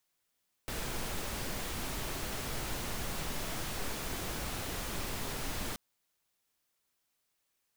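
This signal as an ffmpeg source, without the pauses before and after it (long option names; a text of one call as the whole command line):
ffmpeg -f lavfi -i "anoisesrc=color=pink:amplitude=0.0724:duration=5.08:sample_rate=44100:seed=1" out.wav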